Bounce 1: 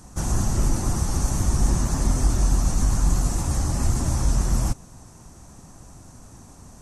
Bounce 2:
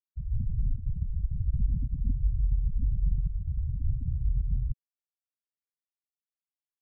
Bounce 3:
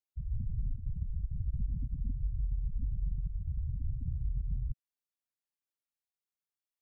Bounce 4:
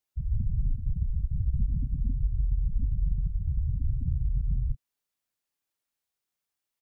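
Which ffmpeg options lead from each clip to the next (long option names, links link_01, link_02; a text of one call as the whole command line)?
ffmpeg -i in.wav -af "afftfilt=real='re*gte(hypot(re,im),0.398)':imag='im*gte(hypot(re,im),0.398)':win_size=1024:overlap=0.75,volume=-6dB" out.wav
ffmpeg -i in.wav -af "acompressor=threshold=-27dB:ratio=3,volume=-3dB" out.wav
ffmpeg -i in.wav -filter_complex "[0:a]asplit=2[link_01][link_02];[link_02]adelay=30,volume=-13dB[link_03];[link_01][link_03]amix=inputs=2:normalize=0,volume=7dB" out.wav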